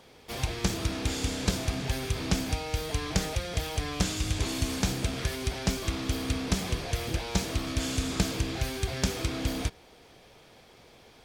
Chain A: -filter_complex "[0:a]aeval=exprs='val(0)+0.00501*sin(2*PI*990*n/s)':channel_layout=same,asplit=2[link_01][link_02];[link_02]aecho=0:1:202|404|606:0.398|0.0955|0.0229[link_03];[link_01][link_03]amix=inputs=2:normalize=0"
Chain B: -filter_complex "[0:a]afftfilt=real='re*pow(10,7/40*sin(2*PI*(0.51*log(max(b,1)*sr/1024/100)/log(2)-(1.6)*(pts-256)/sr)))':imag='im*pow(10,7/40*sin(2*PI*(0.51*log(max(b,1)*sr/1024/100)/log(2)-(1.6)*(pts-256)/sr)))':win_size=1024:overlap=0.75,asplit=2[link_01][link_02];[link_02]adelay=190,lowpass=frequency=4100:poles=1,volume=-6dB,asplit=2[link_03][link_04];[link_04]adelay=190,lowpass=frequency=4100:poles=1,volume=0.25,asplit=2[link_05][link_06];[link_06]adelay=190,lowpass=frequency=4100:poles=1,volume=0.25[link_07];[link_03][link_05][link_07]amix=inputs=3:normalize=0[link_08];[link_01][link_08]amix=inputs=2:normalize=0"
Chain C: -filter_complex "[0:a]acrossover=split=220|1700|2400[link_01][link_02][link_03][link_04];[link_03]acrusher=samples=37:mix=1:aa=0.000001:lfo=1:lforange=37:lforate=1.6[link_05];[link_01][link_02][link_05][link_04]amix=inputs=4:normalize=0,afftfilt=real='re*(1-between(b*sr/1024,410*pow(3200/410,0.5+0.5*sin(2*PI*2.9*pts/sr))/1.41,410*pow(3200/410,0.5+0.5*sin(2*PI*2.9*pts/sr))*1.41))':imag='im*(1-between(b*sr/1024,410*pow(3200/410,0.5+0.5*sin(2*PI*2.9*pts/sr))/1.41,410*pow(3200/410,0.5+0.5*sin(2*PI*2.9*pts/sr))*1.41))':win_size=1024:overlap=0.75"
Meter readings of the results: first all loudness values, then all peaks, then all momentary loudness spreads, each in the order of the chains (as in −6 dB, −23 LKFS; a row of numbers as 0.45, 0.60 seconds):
−30.0, −29.5, −31.5 LKFS; −8.5, −8.0, −11.0 dBFS; 12, 3, 3 LU